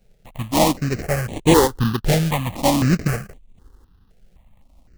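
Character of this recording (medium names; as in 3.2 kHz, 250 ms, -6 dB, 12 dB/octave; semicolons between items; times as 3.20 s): a buzz of ramps at a fixed pitch in blocks of 16 samples; tremolo saw up 0.52 Hz, depth 50%; aliases and images of a low sample rate 1.4 kHz, jitter 20%; notches that jump at a steady rate 3.9 Hz 280–5100 Hz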